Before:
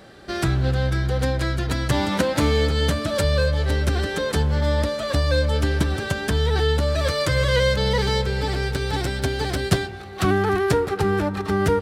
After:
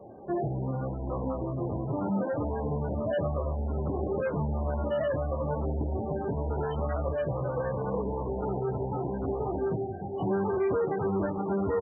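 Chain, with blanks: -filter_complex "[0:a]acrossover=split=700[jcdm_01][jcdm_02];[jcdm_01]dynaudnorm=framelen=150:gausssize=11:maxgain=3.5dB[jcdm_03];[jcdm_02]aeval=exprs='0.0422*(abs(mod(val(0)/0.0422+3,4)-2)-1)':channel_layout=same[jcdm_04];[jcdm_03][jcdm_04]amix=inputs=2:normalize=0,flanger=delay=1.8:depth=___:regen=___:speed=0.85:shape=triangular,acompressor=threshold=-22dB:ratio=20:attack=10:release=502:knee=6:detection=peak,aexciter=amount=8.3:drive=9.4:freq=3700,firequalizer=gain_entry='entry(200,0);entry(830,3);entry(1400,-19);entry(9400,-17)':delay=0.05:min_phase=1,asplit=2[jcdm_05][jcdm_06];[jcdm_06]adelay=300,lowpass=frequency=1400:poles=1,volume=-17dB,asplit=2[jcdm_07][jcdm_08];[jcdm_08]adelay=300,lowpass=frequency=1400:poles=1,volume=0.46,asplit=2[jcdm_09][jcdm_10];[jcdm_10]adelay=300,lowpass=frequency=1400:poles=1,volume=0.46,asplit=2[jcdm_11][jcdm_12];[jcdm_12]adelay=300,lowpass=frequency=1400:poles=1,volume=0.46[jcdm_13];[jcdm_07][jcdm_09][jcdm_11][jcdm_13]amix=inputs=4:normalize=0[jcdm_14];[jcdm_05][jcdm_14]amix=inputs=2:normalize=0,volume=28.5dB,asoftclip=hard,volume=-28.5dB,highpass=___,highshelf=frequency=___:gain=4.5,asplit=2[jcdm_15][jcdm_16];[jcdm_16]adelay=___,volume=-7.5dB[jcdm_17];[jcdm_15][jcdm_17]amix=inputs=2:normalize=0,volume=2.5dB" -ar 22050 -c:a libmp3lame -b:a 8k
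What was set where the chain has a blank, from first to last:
7.9, -29, 90, 2800, 26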